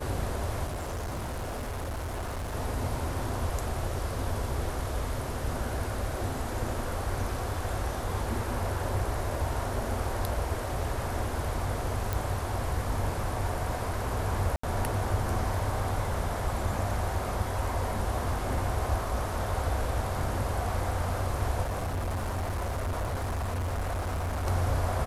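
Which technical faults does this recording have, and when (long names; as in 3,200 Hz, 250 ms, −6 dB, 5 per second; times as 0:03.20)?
0:00.66–0:02.55: clipping −31 dBFS
0:12.13: click
0:14.56–0:14.63: drop-out 74 ms
0:21.62–0:24.47: clipping −28 dBFS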